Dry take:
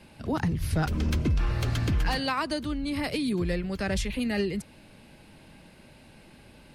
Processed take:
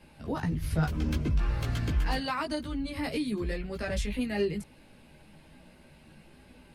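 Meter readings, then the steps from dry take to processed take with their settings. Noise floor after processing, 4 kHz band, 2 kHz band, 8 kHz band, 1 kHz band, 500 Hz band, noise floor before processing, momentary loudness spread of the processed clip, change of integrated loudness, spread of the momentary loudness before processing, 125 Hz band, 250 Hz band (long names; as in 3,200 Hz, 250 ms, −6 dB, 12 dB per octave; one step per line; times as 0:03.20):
−56 dBFS, −5.0 dB, −3.5 dB, −5.0 dB, −3.0 dB, −1.5 dB, −53 dBFS, 5 LU, −3.0 dB, 4 LU, −3.0 dB, −3.0 dB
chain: parametric band 5,400 Hz −2.5 dB 1.8 octaves
multi-voice chorus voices 6, 0.3 Hz, delay 16 ms, depth 4 ms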